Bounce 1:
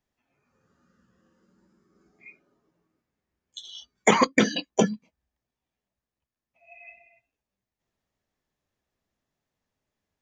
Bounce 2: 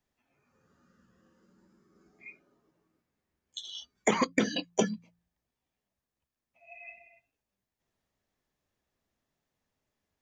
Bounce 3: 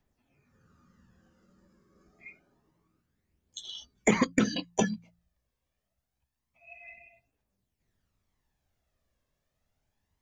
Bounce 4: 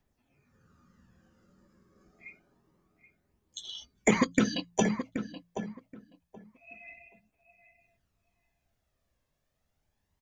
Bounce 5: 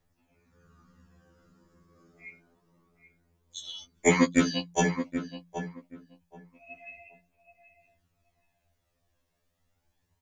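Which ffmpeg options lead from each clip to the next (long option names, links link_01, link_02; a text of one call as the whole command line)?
ffmpeg -i in.wav -filter_complex "[0:a]acrossover=split=560|1200[link_01][link_02][link_03];[link_01]acompressor=threshold=-25dB:ratio=4[link_04];[link_02]acompressor=threshold=-37dB:ratio=4[link_05];[link_03]acompressor=threshold=-31dB:ratio=4[link_06];[link_04][link_05][link_06]amix=inputs=3:normalize=0,bandreject=frequency=57.6:width_type=h:width=4,bandreject=frequency=115.2:width_type=h:width=4,bandreject=frequency=172.8:width_type=h:width=4" out.wav
ffmpeg -i in.wav -af "aphaser=in_gain=1:out_gain=1:delay=1.9:decay=0.45:speed=0.27:type=triangular,lowshelf=frequency=140:gain=8" out.wav
ffmpeg -i in.wav -filter_complex "[0:a]asplit=2[link_01][link_02];[link_02]adelay=777,lowpass=frequency=1600:poles=1,volume=-9dB,asplit=2[link_03][link_04];[link_04]adelay=777,lowpass=frequency=1600:poles=1,volume=0.19,asplit=2[link_05][link_06];[link_06]adelay=777,lowpass=frequency=1600:poles=1,volume=0.19[link_07];[link_01][link_03][link_05][link_07]amix=inputs=4:normalize=0" out.wav
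ffmpeg -i in.wav -af "afftfilt=real='re*2*eq(mod(b,4),0)':imag='im*2*eq(mod(b,4),0)':win_size=2048:overlap=0.75,volume=5dB" out.wav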